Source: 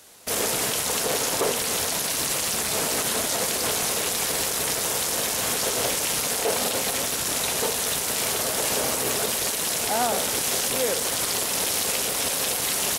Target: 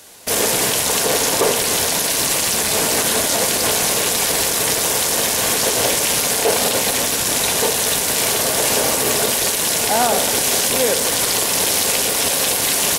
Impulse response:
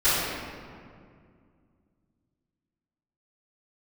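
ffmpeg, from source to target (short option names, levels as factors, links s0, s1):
-filter_complex "[0:a]bandreject=f=1300:w=14,asplit=2[s0][s1];[1:a]atrim=start_sample=2205[s2];[s1][s2]afir=irnorm=-1:irlink=0,volume=0.0398[s3];[s0][s3]amix=inputs=2:normalize=0,volume=2.24"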